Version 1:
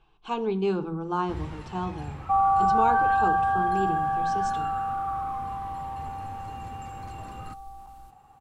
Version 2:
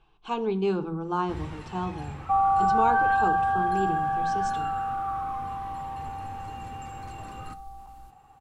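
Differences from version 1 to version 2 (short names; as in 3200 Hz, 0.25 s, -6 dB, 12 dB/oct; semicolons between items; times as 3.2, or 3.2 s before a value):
first sound: send +9.5 dB; second sound: send off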